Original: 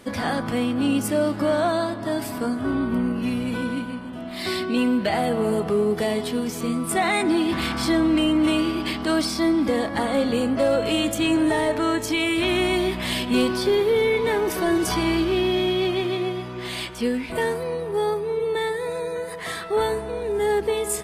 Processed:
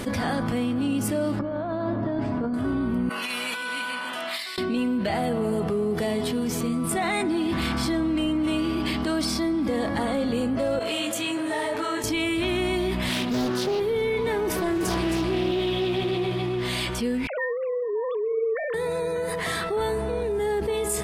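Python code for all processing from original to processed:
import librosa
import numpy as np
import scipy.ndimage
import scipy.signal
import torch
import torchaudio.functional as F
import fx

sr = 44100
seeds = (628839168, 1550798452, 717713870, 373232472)

y = fx.chain(x, sr, fx.over_compress(threshold_db=-26.0, ratio=-0.5),
    fx.spacing_loss(db_at_10k=37), at=(1.39, 2.54))
y = fx.chain(y, sr, fx.highpass(hz=1200.0, slope=12),
    fx.over_compress(threshold_db=-39.0, ratio=-0.5), at=(3.09, 4.58))
y = fx.chain(y, sr, fx.highpass(hz=670.0, slope=6),
    fx.detune_double(cents=37), at=(10.79, 12.04))
y = fx.chain(y, sr, fx.highpass(hz=140.0, slope=12),
    fx.doppler_dist(depth_ms=0.62), at=(13.09, 13.8))
y = fx.chain(y, sr, fx.echo_single(ms=266, db=-5.0),
    fx.doppler_dist(depth_ms=0.24), at=(14.54, 16.63))
y = fx.chain(y, sr, fx.sine_speech(),
    fx.highpass(hz=250.0, slope=12), at=(17.27, 18.74))
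y = fx.low_shelf(y, sr, hz=230.0, db=6.0)
y = fx.env_flatten(y, sr, amount_pct=70)
y = y * librosa.db_to_amplitude(-8.5)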